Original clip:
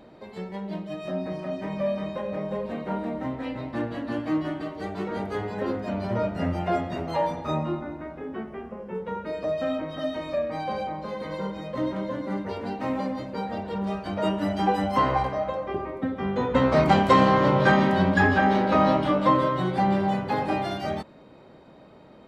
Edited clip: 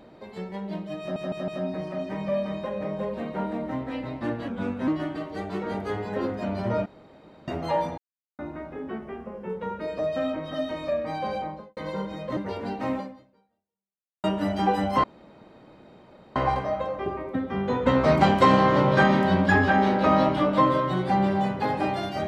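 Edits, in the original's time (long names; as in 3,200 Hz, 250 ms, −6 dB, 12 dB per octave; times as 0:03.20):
0:01.00: stutter 0.16 s, 4 plays
0:04.00–0:04.33: play speed 83%
0:06.31–0:06.93: fill with room tone
0:07.43–0:07.84: silence
0:10.88–0:11.22: fade out and dull
0:11.82–0:12.37: remove
0:12.95–0:14.24: fade out exponential
0:15.04: splice in room tone 1.32 s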